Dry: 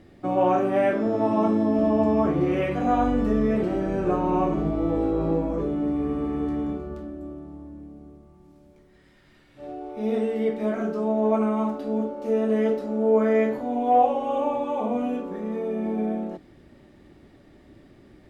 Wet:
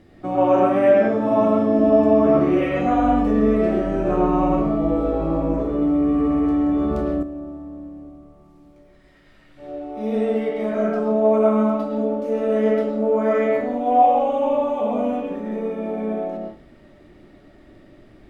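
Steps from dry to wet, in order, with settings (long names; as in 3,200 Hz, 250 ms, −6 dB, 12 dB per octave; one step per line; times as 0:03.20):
convolution reverb RT60 0.35 s, pre-delay 70 ms, DRR −2 dB
0:05.82–0:07.23: envelope flattener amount 70%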